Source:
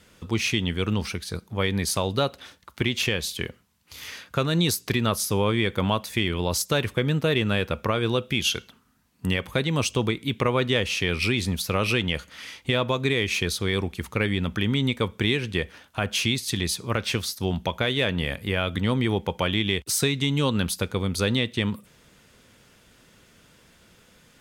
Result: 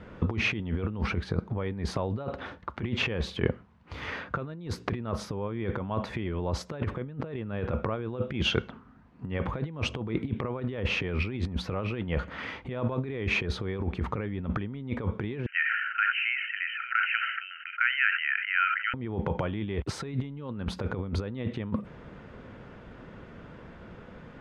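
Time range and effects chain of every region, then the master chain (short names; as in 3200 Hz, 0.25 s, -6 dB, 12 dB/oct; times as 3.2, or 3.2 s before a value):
15.46–18.94 brick-wall FIR band-pass 1300–3100 Hz + sustainer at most 34 dB/s
whole clip: LPF 1300 Hz 12 dB/oct; limiter -21 dBFS; negative-ratio compressor -35 dBFS, ratio -0.5; gain +6.5 dB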